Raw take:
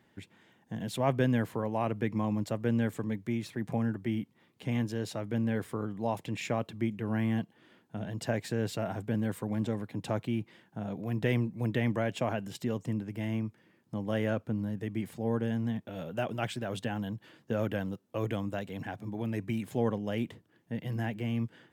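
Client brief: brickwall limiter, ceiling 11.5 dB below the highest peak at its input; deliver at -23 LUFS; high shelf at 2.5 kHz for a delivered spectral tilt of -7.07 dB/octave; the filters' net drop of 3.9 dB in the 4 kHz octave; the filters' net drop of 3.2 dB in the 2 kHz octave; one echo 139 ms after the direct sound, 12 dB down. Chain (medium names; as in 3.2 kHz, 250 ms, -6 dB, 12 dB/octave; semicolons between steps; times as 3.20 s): peaking EQ 2 kHz -4.5 dB; treble shelf 2.5 kHz +5 dB; peaking EQ 4 kHz -8 dB; peak limiter -26.5 dBFS; delay 139 ms -12 dB; trim +14 dB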